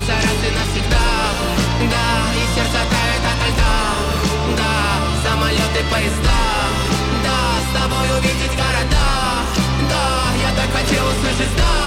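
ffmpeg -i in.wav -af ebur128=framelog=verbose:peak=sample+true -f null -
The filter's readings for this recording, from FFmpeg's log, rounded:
Integrated loudness:
  I:         -16.9 LUFS
  Threshold: -26.9 LUFS
Loudness range:
  LRA:         0.3 LU
  Threshold: -36.9 LUFS
  LRA low:   -17.0 LUFS
  LRA high:  -16.8 LUFS
Sample peak:
  Peak:       -6.7 dBFS
True peak:
  Peak:       -6.7 dBFS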